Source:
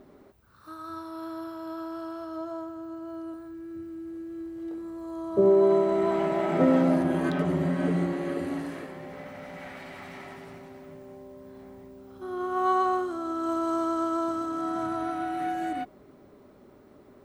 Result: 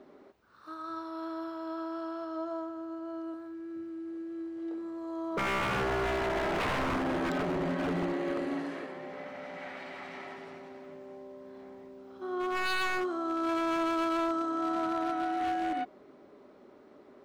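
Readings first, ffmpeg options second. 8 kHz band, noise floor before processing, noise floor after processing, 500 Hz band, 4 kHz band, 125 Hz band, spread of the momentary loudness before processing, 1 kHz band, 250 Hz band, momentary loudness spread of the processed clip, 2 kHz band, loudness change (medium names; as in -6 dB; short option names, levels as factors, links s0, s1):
no reading, -55 dBFS, -56 dBFS, -7.5 dB, +6.5 dB, -8.0 dB, 22 LU, -2.5 dB, -5.5 dB, 16 LU, +4.5 dB, -5.5 dB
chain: -filter_complex "[0:a]acrossover=split=220 6300:gain=0.178 1 0.158[s0][s1][s2];[s0][s1][s2]amix=inputs=3:normalize=0,aeval=exprs='0.0531*(abs(mod(val(0)/0.0531+3,4)-2)-1)':c=same"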